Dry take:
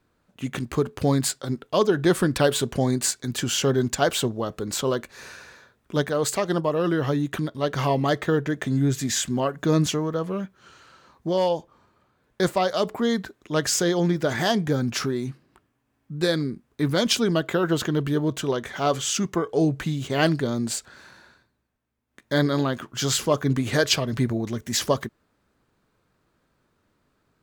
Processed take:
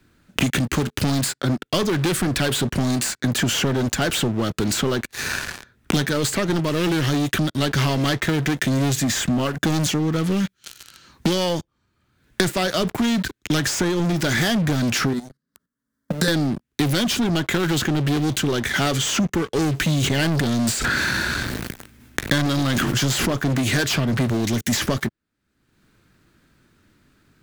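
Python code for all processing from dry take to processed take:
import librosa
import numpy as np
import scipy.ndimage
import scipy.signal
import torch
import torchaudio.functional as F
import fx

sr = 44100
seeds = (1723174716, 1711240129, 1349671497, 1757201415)

y = fx.chain(x, sr, fx.highpass(hz=84.0, slope=6),
    fx.level_steps(step_db=14),
    fx.fixed_phaser(hz=510.0, stages=8), at=(15.13, 16.28))
y = fx.chain(y, sr, fx.low_shelf(hz=79.0, db=9.0),
    fx.sustainer(db_per_s=24.0), at=(20.02, 23.28))
y = fx.band_shelf(y, sr, hz=710.0, db=-8.5, octaves=1.7)
y = fx.leveller(y, sr, passes=5)
y = fx.band_squash(y, sr, depth_pct=100)
y = y * librosa.db_to_amplitude(-9.0)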